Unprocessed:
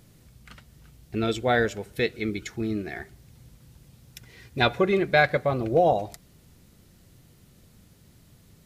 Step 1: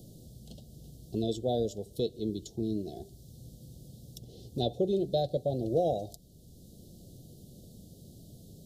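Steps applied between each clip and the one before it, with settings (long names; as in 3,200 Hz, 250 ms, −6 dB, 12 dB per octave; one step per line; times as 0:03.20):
inverse Chebyshev band-stop filter 1,000–2,400 Hz, stop band 40 dB
multiband upward and downward compressor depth 40%
level −4.5 dB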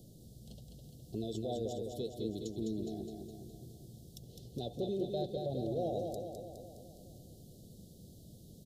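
brickwall limiter −24 dBFS, peak gain reduction 7.5 dB
on a send: repeating echo 207 ms, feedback 58%, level −4.5 dB
on the sum: level −5 dB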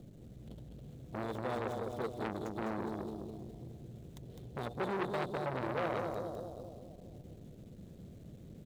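running median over 9 samples
saturating transformer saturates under 1,500 Hz
level +5 dB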